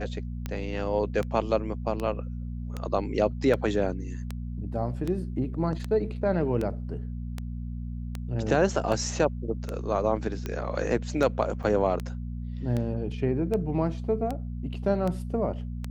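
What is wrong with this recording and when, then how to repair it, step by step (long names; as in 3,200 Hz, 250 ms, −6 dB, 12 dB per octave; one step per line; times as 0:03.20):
mains hum 60 Hz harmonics 4 −34 dBFS
scratch tick 78 rpm −18 dBFS
0:11.63–0:11.64: drop-out 6.5 ms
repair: click removal
hum removal 60 Hz, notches 4
repair the gap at 0:11.63, 6.5 ms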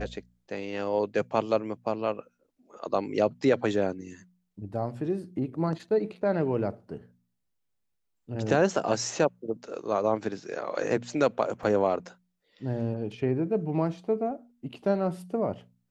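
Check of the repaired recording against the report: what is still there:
none of them is left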